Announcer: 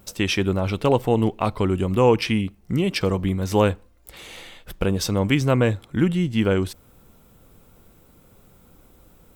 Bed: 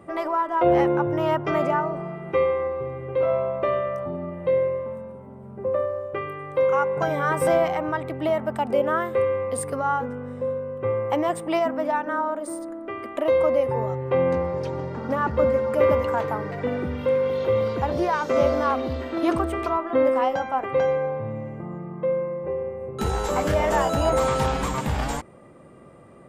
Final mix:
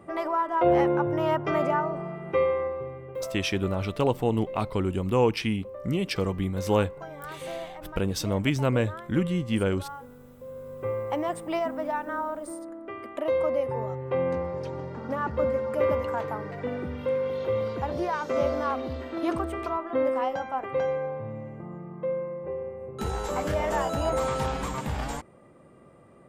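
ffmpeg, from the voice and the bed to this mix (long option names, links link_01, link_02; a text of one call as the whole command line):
ffmpeg -i stem1.wav -i stem2.wav -filter_complex "[0:a]adelay=3150,volume=-5.5dB[link_01];[1:a]volume=8.5dB,afade=type=out:start_time=2.58:duration=0.78:silence=0.199526,afade=type=in:start_time=10.45:duration=0.41:silence=0.281838[link_02];[link_01][link_02]amix=inputs=2:normalize=0" out.wav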